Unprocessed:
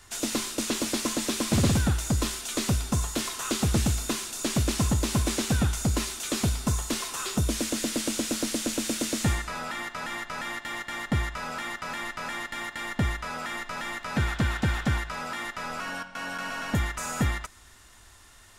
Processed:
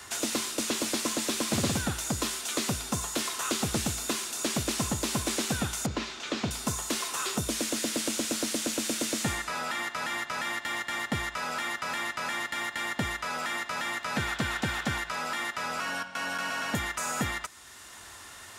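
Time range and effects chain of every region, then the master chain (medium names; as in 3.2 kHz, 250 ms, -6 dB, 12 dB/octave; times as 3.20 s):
5.86–6.51 s: distance through air 180 m + doubling 40 ms -14 dB
whole clip: high-pass 70 Hz; bass shelf 180 Hz -10.5 dB; three bands compressed up and down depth 40%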